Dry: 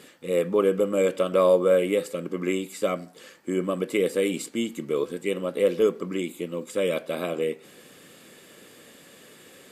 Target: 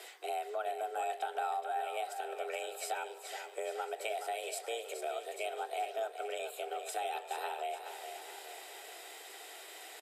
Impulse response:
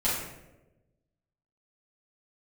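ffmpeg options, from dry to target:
-filter_complex "[0:a]atempo=0.97,equalizer=f=310:t=o:w=0.79:g=-10.5,acompressor=threshold=0.0126:ratio=4,asplit=2[s0][s1];[s1]aecho=0:1:1051:0.0841[s2];[s0][s2]amix=inputs=2:normalize=0,afreqshift=230,asplit=2[s3][s4];[s4]aecho=0:1:423|846|1269|1692|2115|2538:0.376|0.184|0.0902|0.0442|0.0217|0.0106[s5];[s3][s5]amix=inputs=2:normalize=0,volume=1.12"

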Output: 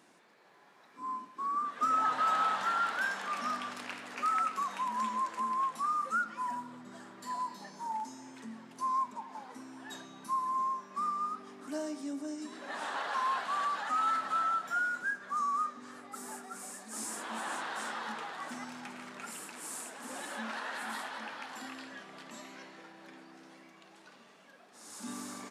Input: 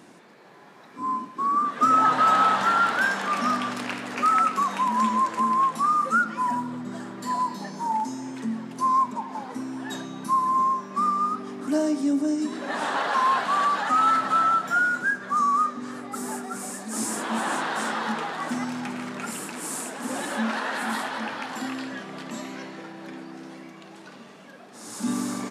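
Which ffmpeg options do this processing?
-af "lowshelf=f=400:g=-10,volume=0.355"

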